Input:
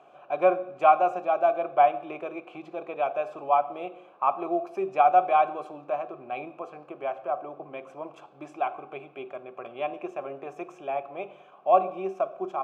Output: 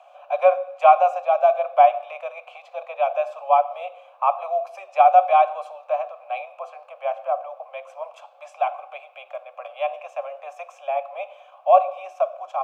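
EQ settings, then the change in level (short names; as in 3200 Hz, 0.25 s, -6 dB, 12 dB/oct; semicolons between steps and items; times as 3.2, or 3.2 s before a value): steep high-pass 530 Hz 96 dB/oct; bell 1500 Hz -6.5 dB 0.87 oct; +6.5 dB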